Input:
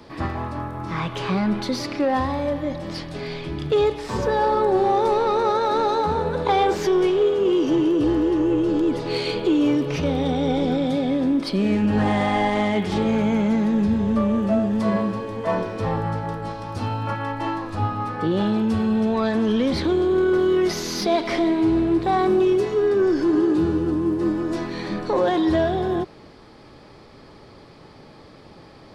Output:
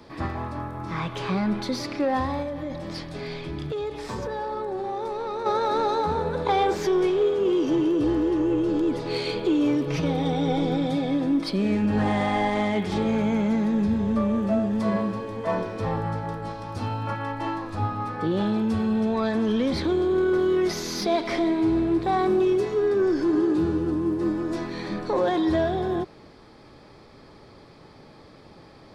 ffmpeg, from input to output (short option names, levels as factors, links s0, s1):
-filter_complex "[0:a]asettb=1/sr,asplit=3[s0][s1][s2];[s0]atrim=end=2.424[s3];[s1]atrim=start=2.42:end=5.46,asetpts=PTS-STARTPTS,afade=t=in:d=0.004:c=qsin,afade=t=out:st=3.036:d=0.004:c=qsin,acompressor=threshold=0.0631:ratio=6:attack=3.2:release=140:knee=1:detection=peak[s4];[s2]atrim=start=5.456[s5];[s3][s4]acrossfade=d=0.004:c1=hsin:c2=qsin[s6];[s6][s5]acrossfade=d=0.004:c1=qsin:c2=hsin,asettb=1/sr,asplit=3[s7][s8][s9];[s7]atrim=end=9.874[s10];[s8]atrim=start=9.87:end=11.51,asetpts=PTS-STARTPTS,afade=t=in:d=0.004:c=qsin,afade=t=out:st=1.636:d=0.004:c=qsin,aecho=1:1:6.3:0.55,atrim=end_sample=72324[s11];[s9]atrim=start=11.506[s12];[s10][s11]acrossfade=d=0.004:c1=hsin:c2=qsin[s13];[s13][s12]acrossfade=d=0.004:c1=qsin:c2=hsin,bandreject=f=2900:w=19,volume=0.708"